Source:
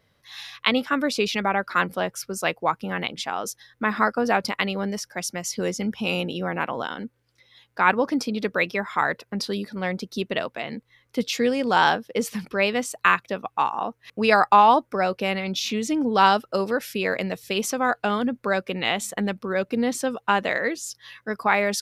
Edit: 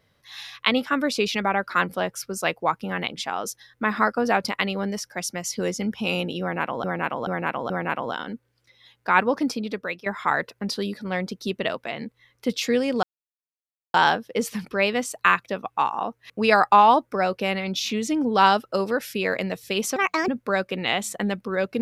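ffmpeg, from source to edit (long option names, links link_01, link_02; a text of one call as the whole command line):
ffmpeg -i in.wav -filter_complex "[0:a]asplit=8[link_01][link_02][link_03][link_04][link_05][link_06][link_07][link_08];[link_01]atrim=end=6.842[link_09];[link_02]atrim=start=6.408:end=6.842[link_10];[link_03]atrim=start=6.408:end=6.842[link_11];[link_04]atrim=start=6.408:end=8.77,asetpts=PTS-STARTPTS,afade=type=out:start_time=1.752:duration=0.61:silence=0.211349[link_12];[link_05]atrim=start=8.77:end=11.74,asetpts=PTS-STARTPTS,afade=type=in:duration=0.004:curve=hsin:silence=0.211349,afade=type=out:start_time=2.966:duration=0.004:curve=hsin,apad=pad_dur=0.91[link_13];[link_06]atrim=start=11.74:end=17.764,asetpts=PTS-STARTPTS,afade=type=in:duration=0.004:curve=hsin[link_14];[link_07]atrim=start=17.76:end=18.26,asetpts=PTS-STARTPTS,asetrate=68355,aresample=44100[link_15];[link_08]atrim=start=18.256[link_16];[link_09][link_10]acrossfade=duration=0.004:curve1=hsin:curve2=hsin[link_17];[link_17][link_11]acrossfade=duration=0.004:curve1=hsin:curve2=hsin[link_18];[link_12][link_13][link_14]concat=n=3:v=0:a=1[link_19];[link_18][link_19]acrossfade=duration=0.004:curve1=hsin:curve2=hsin[link_20];[link_20][link_15]acrossfade=duration=0.004:curve1=hsin:curve2=hsin[link_21];[link_21][link_16]acrossfade=duration=0.004:curve1=hsin:curve2=hsin" out.wav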